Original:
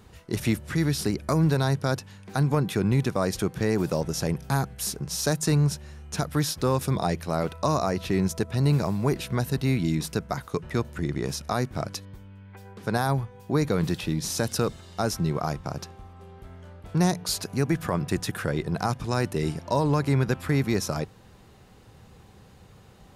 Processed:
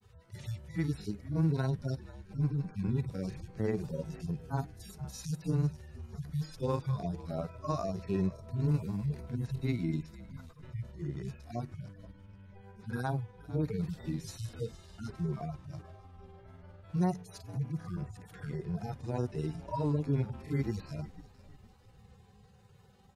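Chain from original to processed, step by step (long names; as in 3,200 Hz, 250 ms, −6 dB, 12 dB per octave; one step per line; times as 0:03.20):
harmonic-percussive split with one part muted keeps harmonic
echo with shifted repeats 475 ms, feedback 42%, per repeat −64 Hz, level −18 dB
granular cloud 100 ms, grains 20 per second, spray 15 ms, pitch spread up and down by 0 semitones
level −6 dB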